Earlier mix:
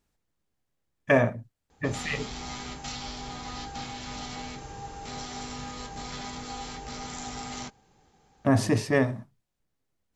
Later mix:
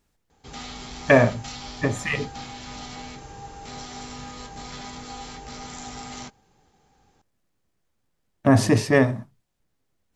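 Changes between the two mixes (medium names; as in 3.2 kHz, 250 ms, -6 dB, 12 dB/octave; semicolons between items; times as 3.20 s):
speech +5.5 dB; background: entry -1.40 s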